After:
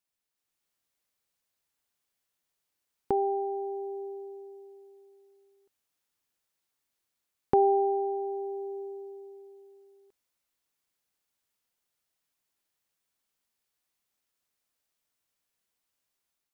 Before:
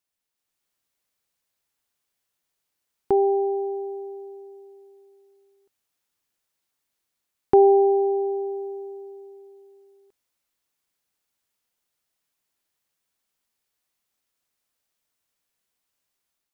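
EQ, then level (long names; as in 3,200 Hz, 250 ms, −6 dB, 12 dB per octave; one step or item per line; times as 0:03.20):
dynamic equaliser 350 Hz, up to −8 dB, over −33 dBFS, Q 2.1
−3.0 dB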